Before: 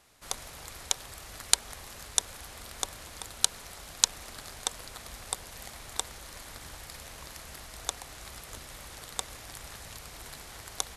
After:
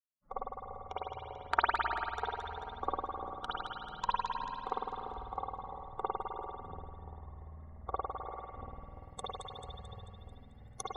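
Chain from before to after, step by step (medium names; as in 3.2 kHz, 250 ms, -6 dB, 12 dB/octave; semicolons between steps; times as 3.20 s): expander on every frequency bin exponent 3; low-pass sweep 1.2 kHz -> 6.6 kHz, 7.91–8.97 s; two-band feedback delay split 880 Hz, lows 343 ms, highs 220 ms, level -6 dB; spring tank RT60 1.6 s, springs 51 ms, chirp 30 ms, DRR -9.5 dB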